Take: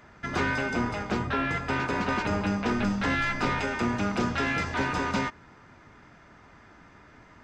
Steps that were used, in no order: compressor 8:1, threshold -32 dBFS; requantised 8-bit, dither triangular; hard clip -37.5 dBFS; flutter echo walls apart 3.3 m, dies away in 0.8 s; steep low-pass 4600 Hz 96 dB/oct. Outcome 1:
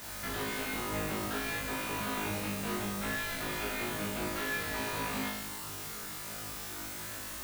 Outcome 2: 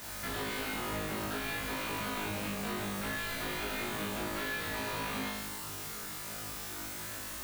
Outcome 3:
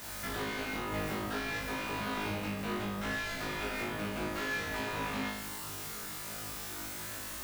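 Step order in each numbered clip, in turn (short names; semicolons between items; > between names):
compressor > hard clip > steep low-pass > requantised > flutter echo; hard clip > steep low-pass > requantised > flutter echo > compressor; steep low-pass > requantised > compressor > hard clip > flutter echo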